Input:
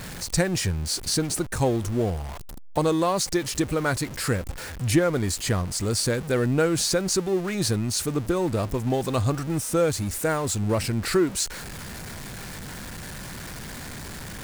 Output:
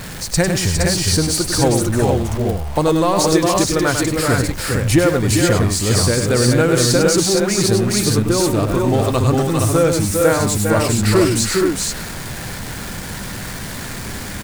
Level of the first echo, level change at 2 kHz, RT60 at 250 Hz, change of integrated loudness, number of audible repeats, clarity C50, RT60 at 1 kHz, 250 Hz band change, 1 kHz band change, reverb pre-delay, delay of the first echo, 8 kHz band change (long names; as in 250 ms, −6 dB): −6.5 dB, +9.0 dB, no reverb audible, +9.0 dB, 3, no reverb audible, no reverb audible, +9.0 dB, +9.0 dB, no reverb audible, 100 ms, +9.0 dB